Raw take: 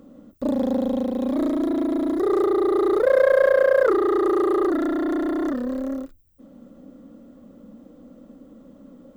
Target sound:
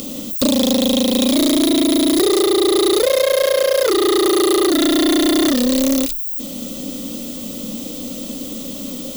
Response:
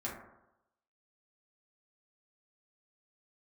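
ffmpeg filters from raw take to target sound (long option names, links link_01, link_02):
-af "acompressor=threshold=-28dB:ratio=6,aexciter=amount=15.2:drive=3.5:freq=2400,aeval=exprs='0.282*sin(PI/2*2.82*val(0)/0.282)':channel_layout=same,volume=3dB"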